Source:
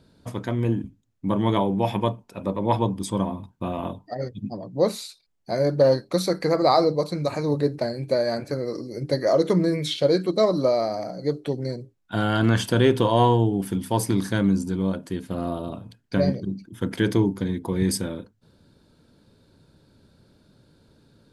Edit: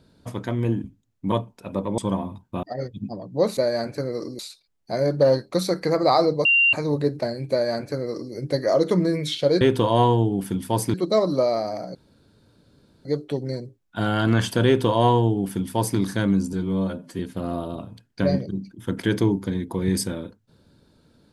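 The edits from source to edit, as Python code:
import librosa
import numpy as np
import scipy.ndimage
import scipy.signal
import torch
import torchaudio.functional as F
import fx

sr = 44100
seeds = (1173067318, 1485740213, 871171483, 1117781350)

y = fx.edit(x, sr, fx.cut(start_s=1.32, length_s=0.71),
    fx.cut(start_s=2.69, length_s=0.37),
    fx.cut(start_s=3.71, length_s=0.33),
    fx.bleep(start_s=7.04, length_s=0.28, hz=2770.0, db=-14.0),
    fx.duplicate(start_s=8.1, length_s=0.82, to_s=4.98),
    fx.insert_room_tone(at_s=11.21, length_s=1.1),
    fx.duplicate(start_s=12.82, length_s=1.33, to_s=10.2),
    fx.stretch_span(start_s=14.69, length_s=0.44, factor=1.5), tone=tone)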